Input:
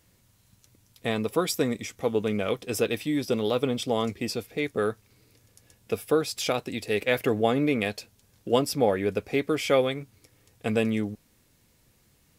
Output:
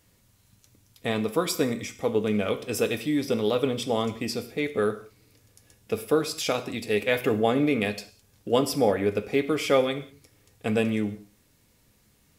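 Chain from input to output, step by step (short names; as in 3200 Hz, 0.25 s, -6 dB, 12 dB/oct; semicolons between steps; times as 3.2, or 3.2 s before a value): non-linear reverb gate 0.22 s falling, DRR 8.5 dB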